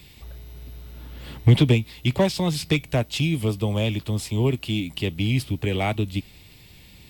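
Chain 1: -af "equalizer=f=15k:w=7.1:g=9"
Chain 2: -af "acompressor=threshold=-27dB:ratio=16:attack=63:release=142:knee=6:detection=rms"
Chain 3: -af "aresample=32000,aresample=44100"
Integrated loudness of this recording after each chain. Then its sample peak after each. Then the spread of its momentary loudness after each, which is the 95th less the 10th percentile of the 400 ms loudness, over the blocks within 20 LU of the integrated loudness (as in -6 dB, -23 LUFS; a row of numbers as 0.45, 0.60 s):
-23.5, -30.5, -23.5 LUFS; -6.0, -14.0, -6.0 dBFS; 22, 13, 23 LU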